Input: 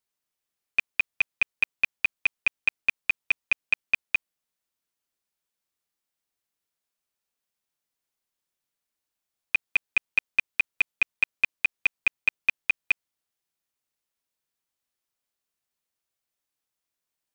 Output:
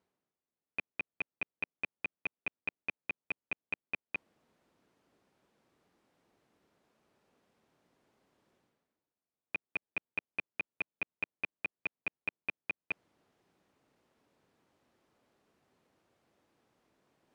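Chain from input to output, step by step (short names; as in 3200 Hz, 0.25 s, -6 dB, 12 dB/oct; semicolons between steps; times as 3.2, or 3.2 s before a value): reverse; upward compressor, threshold -40 dBFS; reverse; band-pass 270 Hz, Q 0.65; gain +1.5 dB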